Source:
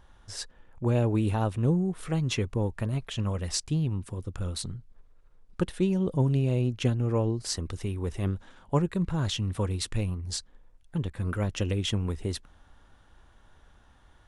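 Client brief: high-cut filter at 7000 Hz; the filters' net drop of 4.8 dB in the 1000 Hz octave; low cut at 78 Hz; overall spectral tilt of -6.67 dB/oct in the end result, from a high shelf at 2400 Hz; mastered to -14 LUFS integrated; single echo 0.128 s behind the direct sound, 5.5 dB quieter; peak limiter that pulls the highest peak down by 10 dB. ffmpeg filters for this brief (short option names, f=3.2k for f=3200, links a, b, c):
-af "highpass=78,lowpass=7k,equalizer=f=1k:t=o:g=-5.5,highshelf=f=2.4k:g=-3.5,alimiter=level_in=1dB:limit=-24dB:level=0:latency=1,volume=-1dB,aecho=1:1:128:0.531,volume=19.5dB"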